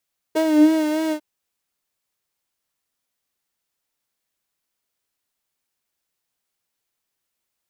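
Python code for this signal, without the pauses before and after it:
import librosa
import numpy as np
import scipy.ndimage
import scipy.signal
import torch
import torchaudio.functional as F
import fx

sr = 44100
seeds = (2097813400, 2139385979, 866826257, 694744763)

y = fx.sub_patch_vibrato(sr, seeds[0], note=75, wave='triangle', wave2='saw', interval_st=0, detune_cents=16, level2_db=-9.0, sub_db=-1.5, noise_db=-18.0, kind='highpass', cutoff_hz=160.0, q=7.0, env_oct=1.5, env_decay_s=0.55, env_sustain_pct=20, attack_ms=20.0, decay_s=0.07, sustain_db=-5.0, release_s=0.08, note_s=0.77, lfo_hz=3.3, vibrato_cents=46)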